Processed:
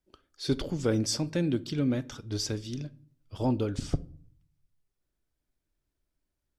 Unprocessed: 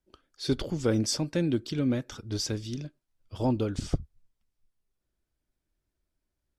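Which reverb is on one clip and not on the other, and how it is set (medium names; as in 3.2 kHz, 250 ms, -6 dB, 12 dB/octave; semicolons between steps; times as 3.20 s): simulated room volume 660 m³, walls furnished, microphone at 0.32 m; trim -1 dB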